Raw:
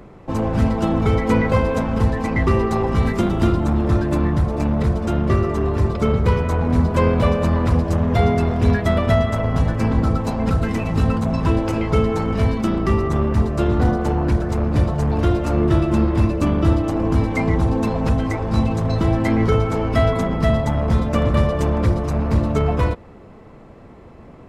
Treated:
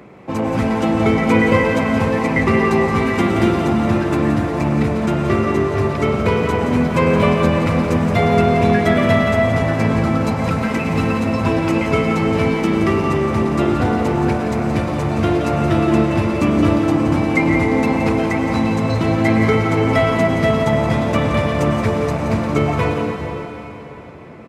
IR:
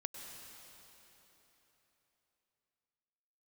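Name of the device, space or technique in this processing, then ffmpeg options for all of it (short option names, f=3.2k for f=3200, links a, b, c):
PA in a hall: -filter_complex "[0:a]highpass=130,equalizer=f=2.3k:t=o:w=0.52:g=7,aecho=1:1:173:0.355[a];[1:a]atrim=start_sample=2205[b];[a][b]afir=irnorm=-1:irlink=0,volume=5dB"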